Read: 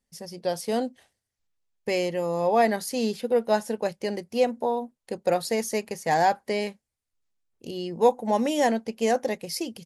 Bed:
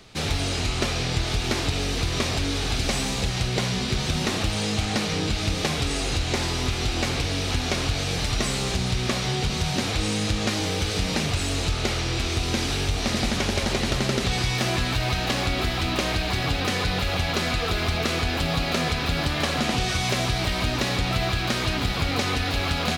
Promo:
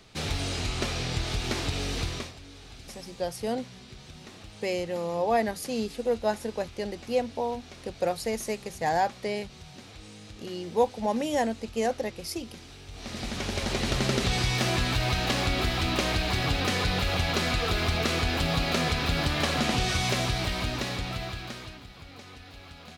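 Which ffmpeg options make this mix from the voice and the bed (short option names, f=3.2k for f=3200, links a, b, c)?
-filter_complex "[0:a]adelay=2750,volume=-4dB[a];[1:a]volume=14.5dB,afade=t=out:st=2.03:d=0.3:silence=0.149624,afade=t=in:st=12.86:d=1.21:silence=0.105925,afade=t=out:st=19.99:d=1.84:silence=0.1[b];[a][b]amix=inputs=2:normalize=0"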